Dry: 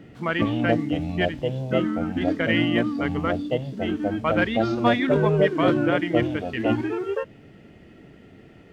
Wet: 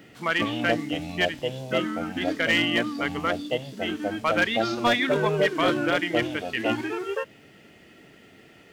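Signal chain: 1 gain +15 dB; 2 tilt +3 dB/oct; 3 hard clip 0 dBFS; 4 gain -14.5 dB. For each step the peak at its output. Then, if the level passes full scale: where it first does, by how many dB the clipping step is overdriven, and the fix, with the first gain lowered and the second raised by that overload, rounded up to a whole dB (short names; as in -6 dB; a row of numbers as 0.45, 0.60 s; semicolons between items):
+8.0, +7.5, 0.0, -14.5 dBFS; step 1, 7.5 dB; step 1 +7 dB, step 4 -6.5 dB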